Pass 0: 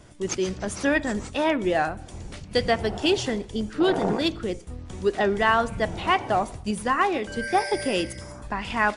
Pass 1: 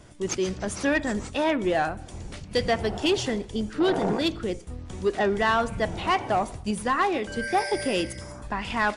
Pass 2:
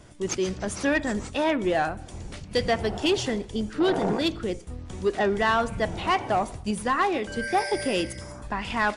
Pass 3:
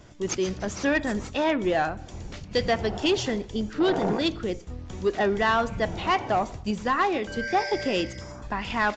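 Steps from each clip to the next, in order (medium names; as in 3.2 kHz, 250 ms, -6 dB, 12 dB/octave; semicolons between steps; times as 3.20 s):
saturation -14 dBFS, distortion -18 dB
no audible change
resampled via 16 kHz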